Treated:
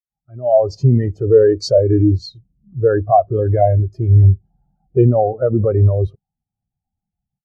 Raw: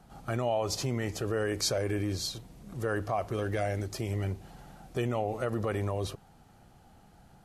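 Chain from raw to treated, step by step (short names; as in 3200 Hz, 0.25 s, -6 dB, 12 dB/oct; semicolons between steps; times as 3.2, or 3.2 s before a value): AGC gain up to 13 dB; spectral expander 2.5:1; gain +3.5 dB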